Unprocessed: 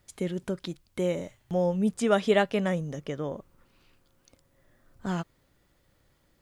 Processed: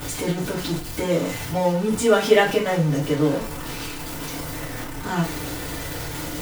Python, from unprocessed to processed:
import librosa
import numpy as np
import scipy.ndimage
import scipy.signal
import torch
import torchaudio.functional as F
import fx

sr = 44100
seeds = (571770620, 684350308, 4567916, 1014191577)

y = x + 0.5 * 10.0 ** (-30.0 / 20.0) * np.sign(x)
y = fx.rev_fdn(y, sr, rt60_s=0.38, lf_ratio=0.95, hf_ratio=0.85, size_ms=20.0, drr_db=-6.0)
y = F.gain(torch.from_numpy(y), -1.0).numpy()